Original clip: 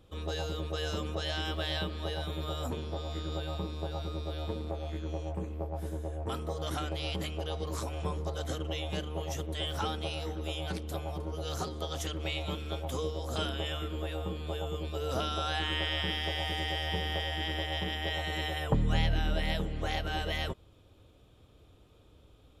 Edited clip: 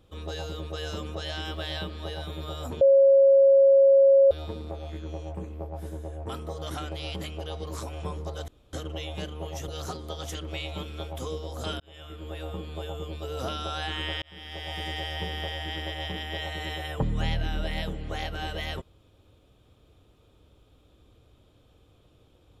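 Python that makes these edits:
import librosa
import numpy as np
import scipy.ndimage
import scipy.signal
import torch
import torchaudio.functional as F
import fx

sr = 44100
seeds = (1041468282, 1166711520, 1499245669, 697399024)

y = fx.edit(x, sr, fx.bleep(start_s=2.81, length_s=1.5, hz=547.0, db=-13.5),
    fx.insert_room_tone(at_s=8.48, length_s=0.25),
    fx.cut(start_s=9.43, length_s=1.97),
    fx.fade_in_span(start_s=13.52, length_s=0.64),
    fx.fade_in_span(start_s=15.94, length_s=0.61), tone=tone)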